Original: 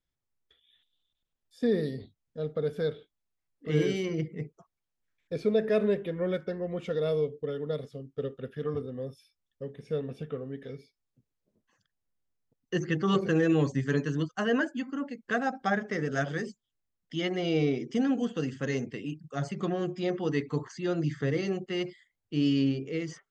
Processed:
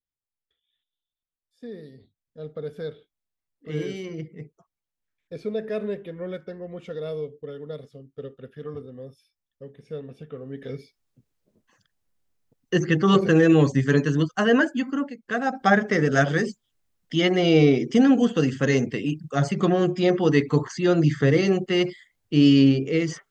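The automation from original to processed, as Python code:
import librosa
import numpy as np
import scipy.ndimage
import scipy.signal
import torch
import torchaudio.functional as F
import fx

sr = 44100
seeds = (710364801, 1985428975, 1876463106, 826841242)

y = fx.gain(x, sr, db=fx.line((1.89, -12.0), (2.47, -3.0), (10.29, -3.0), (10.74, 8.0), (14.99, 8.0), (15.19, -1.0), (15.7, 10.0)))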